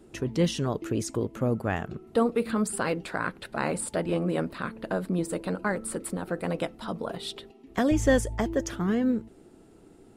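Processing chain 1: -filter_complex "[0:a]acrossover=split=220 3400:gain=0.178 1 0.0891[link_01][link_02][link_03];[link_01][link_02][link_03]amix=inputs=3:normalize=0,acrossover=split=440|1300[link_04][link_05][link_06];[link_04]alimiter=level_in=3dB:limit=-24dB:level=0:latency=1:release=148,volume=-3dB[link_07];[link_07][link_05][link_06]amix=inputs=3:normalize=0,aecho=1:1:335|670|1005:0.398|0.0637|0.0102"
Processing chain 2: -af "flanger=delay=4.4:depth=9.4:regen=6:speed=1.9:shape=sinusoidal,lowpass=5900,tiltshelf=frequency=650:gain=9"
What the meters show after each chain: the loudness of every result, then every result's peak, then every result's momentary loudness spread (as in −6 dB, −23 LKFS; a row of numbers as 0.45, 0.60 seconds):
−32.0, −27.0 LKFS; −13.0, −9.5 dBFS; 8, 11 LU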